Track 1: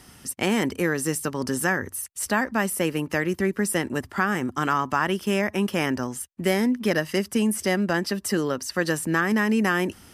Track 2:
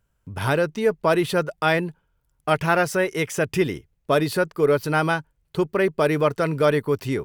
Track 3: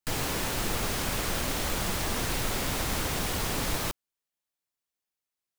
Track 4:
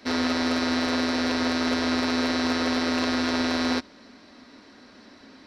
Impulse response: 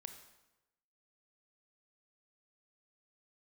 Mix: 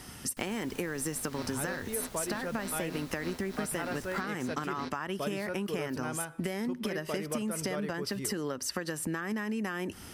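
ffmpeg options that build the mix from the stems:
-filter_complex "[0:a]acompressor=threshold=-28dB:ratio=6,volume=2dB,asplit=3[a][b][c];[b]volume=-16.5dB[d];[1:a]adelay=1100,volume=-15dB,asplit=2[e][f];[f]volume=-3.5dB[g];[2:a]adelay=300,volume=-17dB[h];[3:a]aeval=exprs='val(0)*pow(10,-20*(0.5-0.5*cos(2*PI*3.2*n/s))/20)':c=same,adelay=1100,volume=-10dB[i];[c]apad=whole_len=289407[j];[i][j]sidechaingate=range=-33dB:threshold=-34dB:ratio=16:detection=peak[k];[4:a]atrim=start_sample=2205[l];[d][g]amix=inputs=2:normalize=0[m];[m][l]afir=irnorm=-1:irlink=0[n];[a][e][h][k][n]amix=inputs=5:normalize=0,acompressor=threshold=-31dB:ratio=4"

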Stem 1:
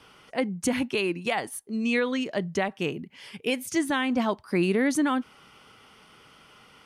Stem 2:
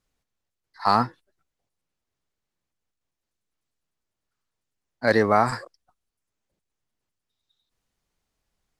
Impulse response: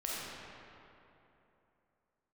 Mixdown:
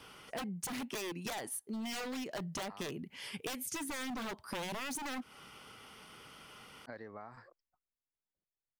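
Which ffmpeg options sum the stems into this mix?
-filter_complex "[0:a]aeval=exprs='0.0531*(abs(mod(val(0)/0.0531+3,4)-2)-1)':c=same,volume=-1dB[a];[1:a]lowpass=2.9k,acompressor=threshold=-27dB:ratio=12,adelay=1850,volume=-17dB[b];[a][b]amix=inputs=2:normalize=0,highshelf=f=10k:g=10,acompressor=threshold=-38dB:ratio=6"

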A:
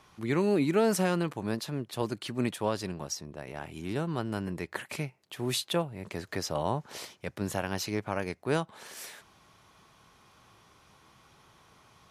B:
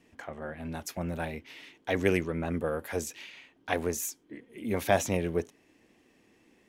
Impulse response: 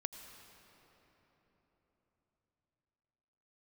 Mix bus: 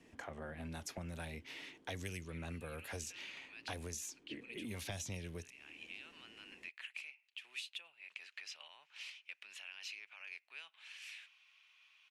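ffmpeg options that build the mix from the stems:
-filter_complex "[0:a]aemphasis=mode=reproduction:type=75fm,alimiter=level_in=1dB:limit=-24dB:level=0:latency=1:release=28,volume=-1dB,highpass=f=2.6k:t=q:w=5.5,adelay=2050,volume=-6dB[a];[1:a]acrossover=split=140|3000[b][c][d];[c]acompressor=threshold=-43dB:ratio=4[e];[b][e][d]amix=inputs=3:normalize=0,volume=-0.5dB,asplit=2[f][g];[g]apad=whole_len=624160[h];[a][h]sidechaincompress=threshold=-46dB:ratio=8:attack=31:release=524[i];[i][f]amix=inputs=2:normalize=0,acrossover=split=1100|5800[j][k][l];[j]acompressor=threshold=-43dB:ratio=4[m];[k]acompressor=threshold=-46dB:ratio=4[n];[l]acompressor=threshold=-52dB:ratio=4[o];[m][n][o]amix=inputs=3:normalize=0,lowpass=f=12k:w=0.5412,lowpass=f=12k:w=1.3066"

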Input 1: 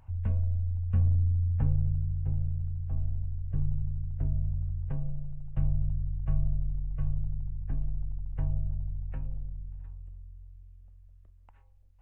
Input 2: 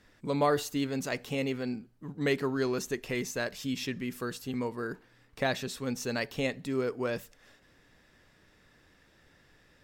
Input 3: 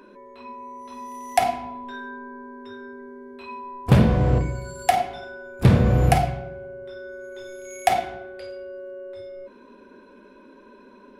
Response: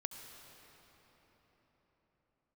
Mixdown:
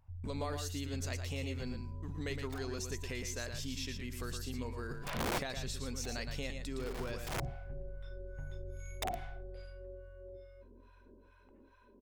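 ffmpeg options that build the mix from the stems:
-filter_complex "[0:a]acompressor=threshold=-29dB:ratio=3,volume=-11.5dB,asplit=2[a][b];[b]volume=-13dB[c];[1:a]agate=range=-35dB:threshold=-50dB:ratio=16:detection=peak,equalizer=f=6k:w=0.52:g=8.5,acompressor=threshold=-42dB:ratio=2.5,volume=-2dB,asplit=3[d][e][f];[e]volume=-6.5dB[g];[2:a]acrossover=split=4800[h][i];[i]acompressor=threshold=-51dB:ratio=4:attack=1:release=60[j];[h][j]amix=inputs=2:normalize=0,acrossover=split=720[k][l];[k]aeval=exprs='val(0)*(1-1/2+1/2*cos(2*PI*2.4*n/s))':c=same[m];[l]aeval=exprs='val(0)*(1-1/2-1/2*cos(2*PI*2.4*n/s))':c=same[n];[m][n]amix=inputs=2:normalize=0,aeval=exprs='(mod(8.91*val(0)+1,2)-1)/8.91':c=same,adelay=1150,volume=-10dB[o];[f]apad=whole_len=544523[p];[o][p]sidechaincompress=threshold=-58dB:ratio=5:attack=25:release=195[q];[c][g]amix=inputs=2:normalize=0,aecho=0:1:115:1[r];[a][d][q][r]amix=inputs=4:normalize=0"

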